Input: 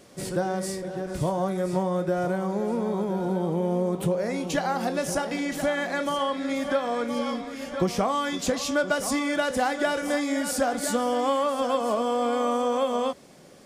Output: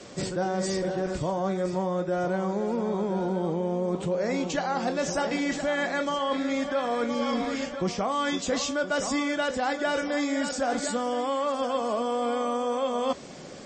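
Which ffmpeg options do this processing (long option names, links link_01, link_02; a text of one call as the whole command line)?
ffmpeg -i in.wav -af "adynamicequalizer=threshold=0.00562:dfrequency=140:dqfactor=2.3:tfrequency=140:tqfactor=2.3:attack=5:release=100:ratio=0.375:range=2:mode=cutabove:tftype=bell,areverse,acompressor=threshold=-32dB:ratio=10,areverse,volume=8.5dB" -ar 24000 -c:a libmp3lame -b:a 32k out.mp3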